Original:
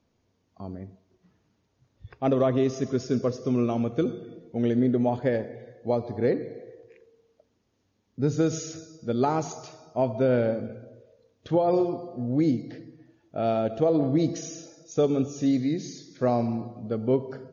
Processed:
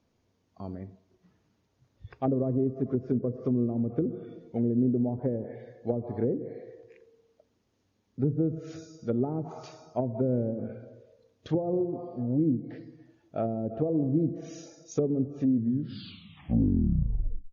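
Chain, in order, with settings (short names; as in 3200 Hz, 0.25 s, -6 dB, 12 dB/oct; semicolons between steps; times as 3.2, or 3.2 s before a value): tape stop at the end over 2.12 s; treble ducked by the level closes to 360 Hz, closed at -21.5 dBFS; gain -1 dB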